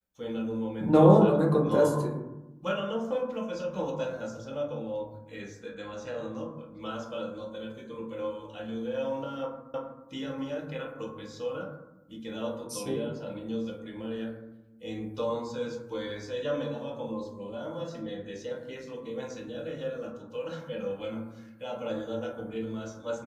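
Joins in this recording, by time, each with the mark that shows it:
0:09.74: the same again, the last 0.32 s

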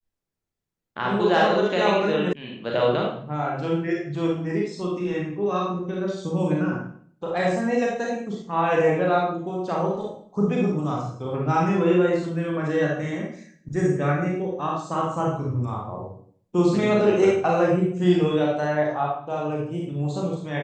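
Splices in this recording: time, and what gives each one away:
0:02.33: cut off before it has died away

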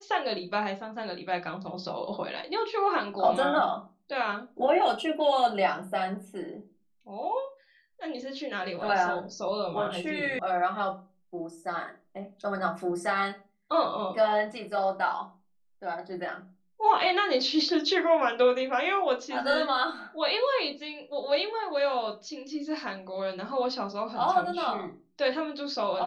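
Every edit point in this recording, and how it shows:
0:10.39: cut off before it has died away

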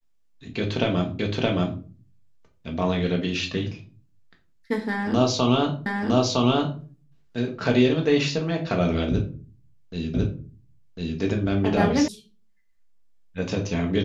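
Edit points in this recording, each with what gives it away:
0:01.19: the same again, the last 0.62 s
0:05.86: the same again, the last 0.96 s
0:10.14: the same again, the last 1.05 s
0:12.08: cut off before it has died away

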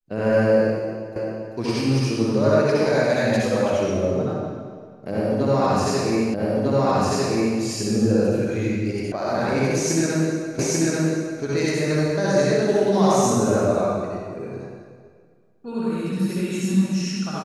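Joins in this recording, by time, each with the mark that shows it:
0:01.16: the same again, the last 0.39 s
0:06.34: the same again, the last 1.25 s
0:09.12: cut off before it has died away
0:10.59: the same again, the last 0.84 s

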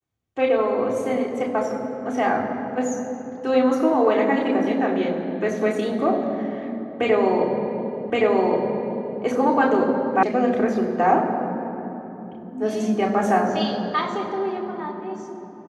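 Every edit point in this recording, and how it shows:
0:08.10: the same again, the last 1.12 s
0:10.23: cut off before it has died away

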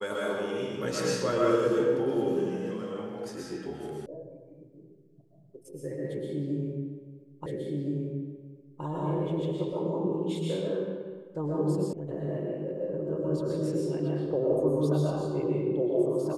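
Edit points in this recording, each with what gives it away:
0:04.06: cut off before it has died away
0:07.46: the same again, the last 1.37 s
0:11.93: cut off before it has died away

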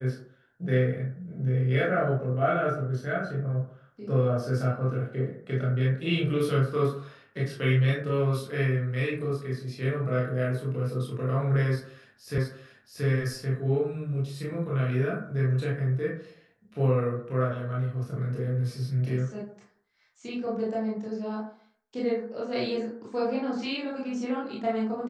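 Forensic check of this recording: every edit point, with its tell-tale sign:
0:12.38: the same again, the last 0.68 s

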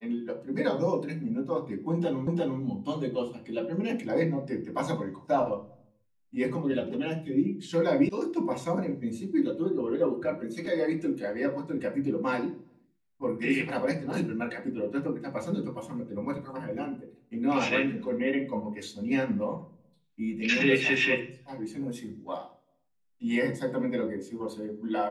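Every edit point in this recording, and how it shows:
0:02.27: the same again, the last 0.35 s
0:08.09: cut off before it has died away

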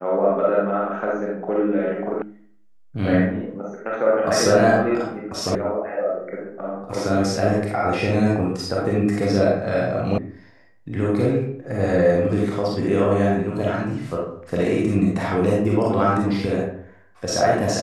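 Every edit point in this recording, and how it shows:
0:02.22: cut off before it has died away
0:05.55: cut off before it has died away
0:10.18: cut off before it has died away

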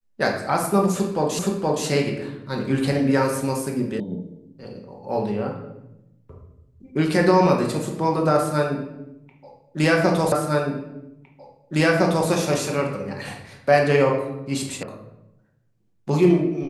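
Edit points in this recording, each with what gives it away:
0:01.39: the same again, the last 0.47 s
0:04.00: cut off before it has died away
0:10.32: the same again, the last 1.96 s
0:14.83: cut off before it has died away

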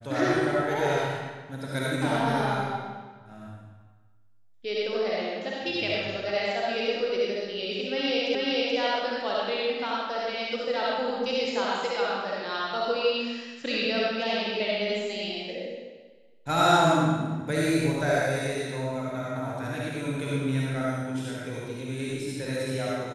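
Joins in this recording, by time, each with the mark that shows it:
0:08.35: the same again, the last 0.43 s

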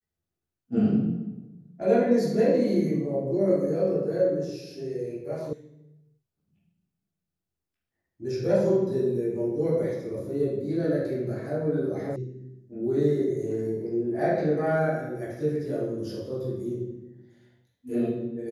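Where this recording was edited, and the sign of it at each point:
0:05.53: cut off before it has died away
0:12.16: cut off before it has died away

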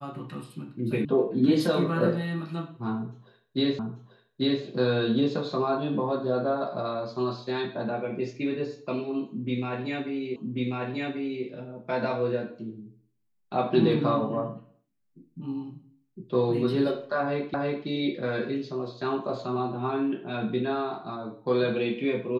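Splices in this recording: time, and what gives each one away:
0:01.05: cut off before it has died away
0:03.79: the same again, the last 0.84 s
0:10.36: the same again, the last 1.09 s
0:17.54: the same again, the last 0.33 s

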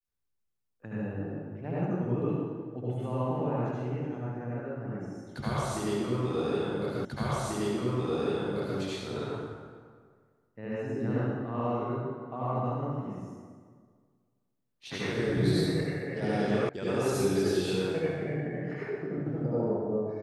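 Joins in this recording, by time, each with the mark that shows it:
0:07.05: the same again, the last 1.74 s
0:16.69: cut off before it has died away

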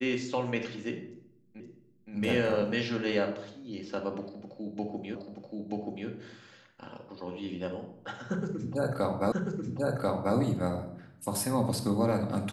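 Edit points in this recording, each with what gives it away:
0:01.60: the same again, the last 0.52 s
0:05.15: the same again, the last 0.93 s
0:09.32: the same again, the last 1.04 s

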